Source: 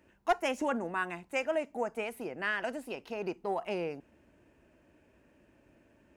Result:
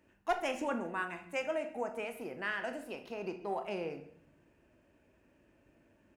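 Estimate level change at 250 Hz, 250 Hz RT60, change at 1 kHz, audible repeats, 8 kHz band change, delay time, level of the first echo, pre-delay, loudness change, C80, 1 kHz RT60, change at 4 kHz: -3.0 dB, 0.85 s, -3.5 dB, 1, -3.5 dB, 134 ms, -19.5 dB, 21 ms, -3.5 dB, 14.0 dB, 0.50 s, -3.0 dB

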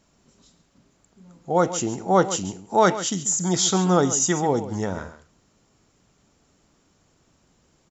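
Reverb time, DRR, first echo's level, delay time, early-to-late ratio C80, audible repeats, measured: no reverb, no reverb, -13.5 dB, 137 ms, no reverb, 1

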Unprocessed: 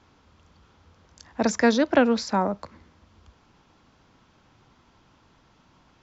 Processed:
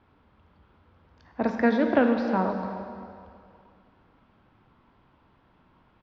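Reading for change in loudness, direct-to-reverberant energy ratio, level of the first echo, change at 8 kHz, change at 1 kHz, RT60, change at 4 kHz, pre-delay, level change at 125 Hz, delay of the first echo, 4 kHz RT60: -2.0 dB, 3.5 dB, -17.0 dB, no reading, -2.0 dB, 2.4 s, -11.5 dB, 13 ms, -0.5 dB, 317 ms, 2.1 s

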